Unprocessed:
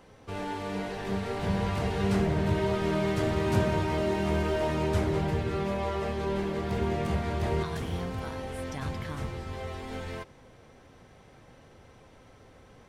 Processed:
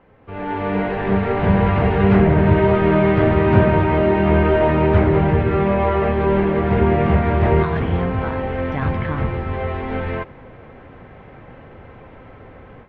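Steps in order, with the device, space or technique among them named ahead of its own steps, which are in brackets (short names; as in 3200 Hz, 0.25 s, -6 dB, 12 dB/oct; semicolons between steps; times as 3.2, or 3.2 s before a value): action camera in a waterproof case (LPF 2500 Hz 24 dB/oct; AGC gain up to 12 dB; gain +1.5 dB; AAC 64 kbps 16000 Hz)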